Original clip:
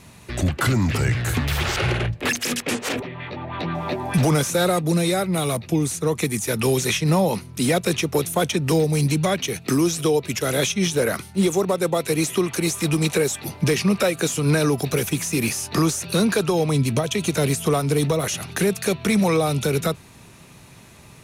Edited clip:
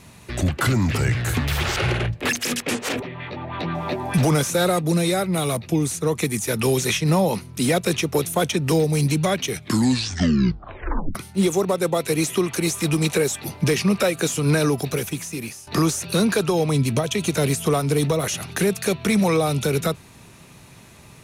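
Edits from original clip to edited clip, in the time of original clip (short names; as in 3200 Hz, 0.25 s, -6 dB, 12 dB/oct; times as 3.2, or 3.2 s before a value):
9.48 tape stop 1.67 s
14.66–15.67 fade out, to -16 dB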